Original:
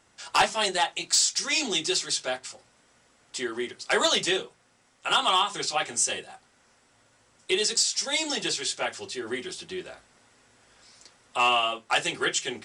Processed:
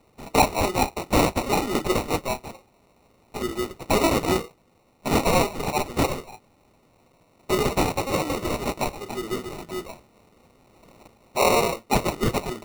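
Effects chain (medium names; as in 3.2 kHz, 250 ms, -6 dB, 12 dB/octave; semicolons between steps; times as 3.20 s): sample-and-hold 27×; trim +3 dB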